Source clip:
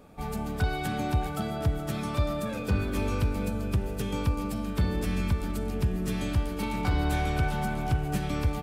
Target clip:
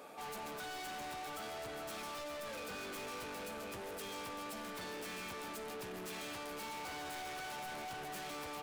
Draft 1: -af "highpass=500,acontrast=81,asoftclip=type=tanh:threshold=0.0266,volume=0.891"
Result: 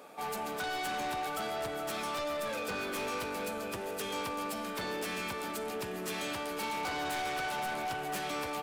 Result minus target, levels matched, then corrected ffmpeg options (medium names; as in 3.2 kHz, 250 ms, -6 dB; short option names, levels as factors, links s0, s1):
saturation: distortion -5 dB
-af "highpass=500,acontrast=81,asoftclip=type=tanh:threshold=0.0075,volume=0.891"